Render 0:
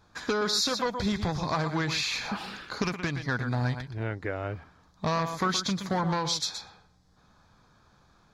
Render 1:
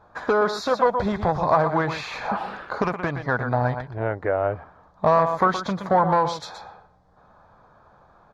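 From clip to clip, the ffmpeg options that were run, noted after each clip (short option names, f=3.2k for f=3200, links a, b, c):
-af "firequalizer=gain_entry='entry(280,0);entry(590,12);entry(2400,-5);entry(5100,-13)':delay=0.05:min_phase=1,volume=2.5dB"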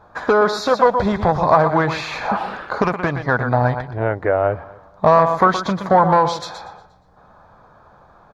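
-af "aecho=1:1:237|474:0.0708|0.0191,volume=5.5dB"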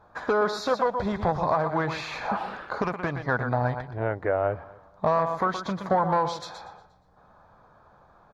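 -af "alimiter=limit=-5.5dB:level=0:latency=1:release=478,volume=-7.5dB"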